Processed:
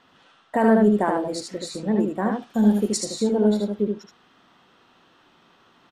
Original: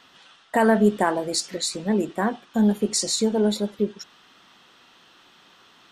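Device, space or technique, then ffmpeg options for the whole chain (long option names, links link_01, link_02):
through cloth: -filter_complex "[0:a]highshelf=frequency=1900:gain=-12,asplit=3[link_01][link_02][link_03];[link_01]afade=type=out:start_time=2.31:duration=0.02[link_04];[link_02]highshelf=frequency=3400:gain=12,afade=type=in:start_time=2.31:duration=0.02,afade=type=out:start_time=2.96:duration=0.02[link_05];[link_03]afade=type=in:start_time=2.96:duration=0.02[link_06];[link_04][link_05][link_06]amix=inputs=3:normalize=0,aecho=1:1:76:0.668"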